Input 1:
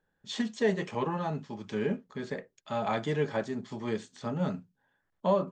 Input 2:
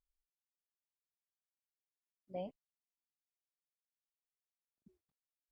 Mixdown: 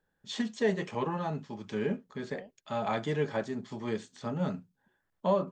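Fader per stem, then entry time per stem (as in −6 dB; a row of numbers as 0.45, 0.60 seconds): −1.0, −6.5 decibels; 0.00, 0.00 seconds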